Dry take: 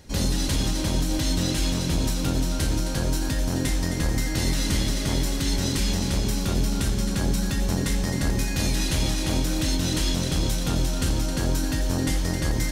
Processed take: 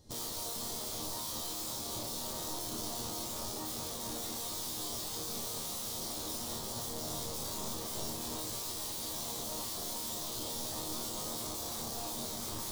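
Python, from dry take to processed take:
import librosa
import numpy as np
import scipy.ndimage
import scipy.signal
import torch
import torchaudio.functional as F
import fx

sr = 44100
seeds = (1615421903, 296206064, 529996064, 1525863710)

y = (np.mod(10.0 ** (25.0 / 20.0) * x + 1.0, 2.0) - 1.0) / 10.0 ** (25.0 / 20.0)
y = fx.band_shelf(y, sr, hz=2000.0, db=-12.0, octaves=1.2)
y = fx.resonator_bank(y, sr, root=39, chord='sus4', decay_s=0.44)
y = y * 10.0 ** (4.5 / 20.0)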